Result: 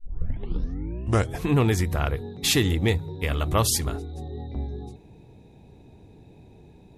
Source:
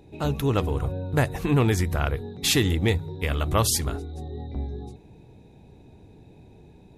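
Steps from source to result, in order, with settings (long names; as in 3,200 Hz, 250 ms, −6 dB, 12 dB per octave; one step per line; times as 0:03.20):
turntable start at the beginning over 1.48 s
notch filter 1,500 Hz, Q 23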